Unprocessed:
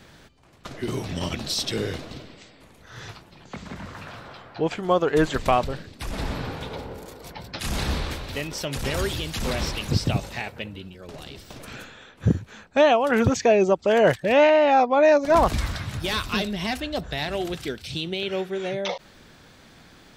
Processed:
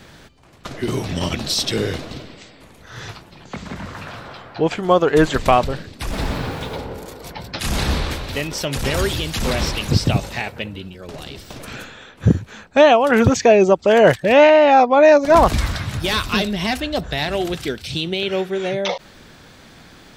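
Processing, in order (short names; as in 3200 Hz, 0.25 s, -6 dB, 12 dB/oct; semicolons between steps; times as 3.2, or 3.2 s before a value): 6.09–6.76 added noise pink -52 dBFS; gain +6 dB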